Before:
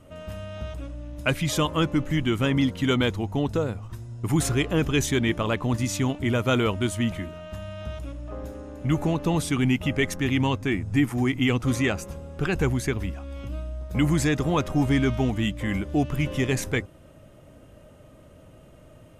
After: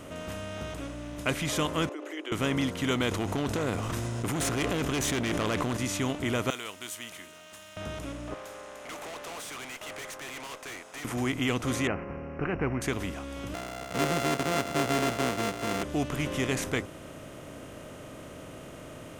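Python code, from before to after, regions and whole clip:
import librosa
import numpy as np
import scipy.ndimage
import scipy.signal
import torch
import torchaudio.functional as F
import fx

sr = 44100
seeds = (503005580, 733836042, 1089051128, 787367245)

y = fx.chain(x, sr, fx.envelope_sharpen(power=1.5),
    fx.over_compress(threshold_db=-24.0, ratio=-0.5),
    fx.steep_highpass(hz=320.0, slope=96), at=(1.89, 2.32))
y = fx.chain(y, sr, fx.tube_stage(drive_db=22.0, bias=0.4),
    fx.env_flatten(amount_pct=100), at=(3.11, 5.77))
y = fx.chain(y, sr, fx.differentiator(),
    fx.resample_linear(factor=2), at=(6.5, 7.77))
y = fx.chain(y, sr, fx.highpass(hz=600.0, slope=24),
    fx.tube_stage(drive_db=41.0, bias=0.4), at=(8.34, 11.05))
y = fx.chain(y, sr, fx.median_filter(points=15),
    fx.lowpass(hz=3200.0, slope=12),
    fx.resample_bad(factor=8, down='none', up='filtered'), at=(11.87, 12.82))
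y = fx.chain(y, sr, fx.sample_sort(block=64),
    fx.highpass(hz=150.0, slope=12),
    fx.high_shelf(hz=6100.0, db=-7.0), at=(13.54, 15.83))
y = fx.bin_compress(y, sr, power=0.6)
y = fx.low_shelf(y, sr, hz=100.0, db=-8.5)
y = y * 10.0 ** (-7.0 / 20.0)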